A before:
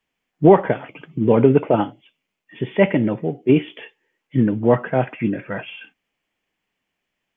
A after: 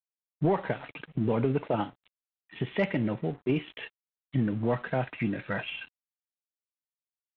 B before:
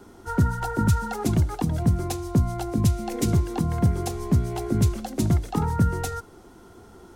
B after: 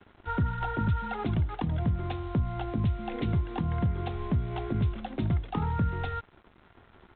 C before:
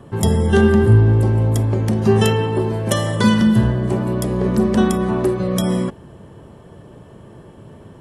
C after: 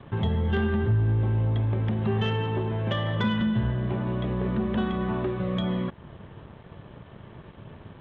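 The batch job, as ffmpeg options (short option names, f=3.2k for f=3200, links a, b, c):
-af "acompressor=threshold=-26dB:ratio=2,aresample=8000,aeval=exprs='sgn(val(0))*max(abs(val(0))-0.00376,0)':c=same,aresample=44100,equalizer=f=380:w=0.63:g=-5.5,asoftclip=type=tanh:threshold=-16.5dB,volume=1.5dB"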